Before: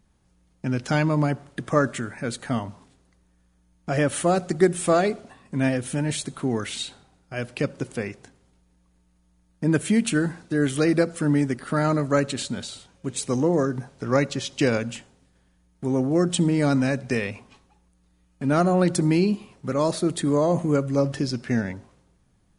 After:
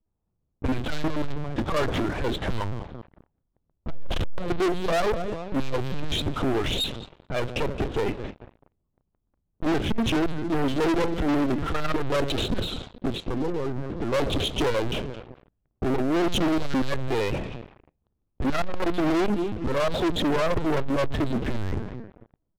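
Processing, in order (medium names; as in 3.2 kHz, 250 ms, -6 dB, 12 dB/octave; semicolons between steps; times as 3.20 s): 16.16–16.93 s: jump at every zero crossing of -28 dBFS; feedback comb 340 Hz, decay 0.19 s, harmonics all, mix 40%; feedback delay 218 ms, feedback 35%, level -20 dB; 13.15–14.14 s: compression 10:1, threshold -36 dBFS, peak gain reduction 16.5 dB; LPC vocoder at 8 kHz pitch kept; 3.90–4.38 s: bass shelf 80 Hz +11.5 dB; saturation -20.5 dBFS, distortion -10 dB; peaking EQ 1.9 kHz -11 dB 0.96 oct; waveshaping leveller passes 5; level-controlled noise filter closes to 1.5 kHz, open at -24 dBFS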